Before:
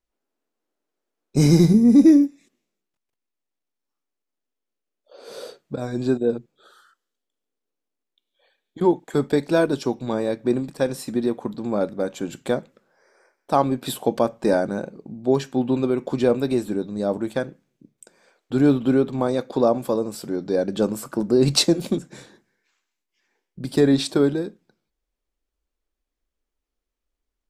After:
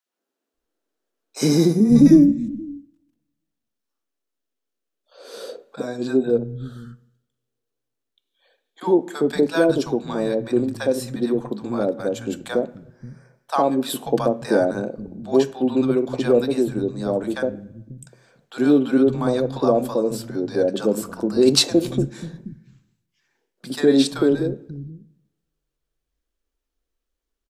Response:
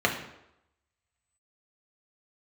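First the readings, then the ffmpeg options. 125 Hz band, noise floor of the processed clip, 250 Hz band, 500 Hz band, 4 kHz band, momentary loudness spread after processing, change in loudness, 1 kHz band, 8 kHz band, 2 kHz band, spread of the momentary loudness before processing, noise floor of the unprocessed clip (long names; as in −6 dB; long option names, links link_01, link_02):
−2.0 dB, −81 dBFS, +1.0 dB, +2.0 dB, +2.0 dB, 17 LU, +1.0 dB, 0.0 dB, +2.0 dB, +2.0 dB, 12 LU, −83 dBFS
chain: -filter_complex "[0:a]acrossover=split=160|790[link_01][link_02][link_03];[link_02]adelay=60[link_04];[link_01]adelay=540[link_05];[link_05][link_04][link_03]amix=inputs=3:normalize=0,asplit=2[link_06][link_07];[1:a]atrim=start_sample=2205,asetrate=42336,aresample=44100[link_08];[link_07][link_08]afir=irnorm=-1:irlink=0,volume=-25.5dB[link_09];[link_06][link_09]amix=inputs=2:normalize=0,volume=1.5dB"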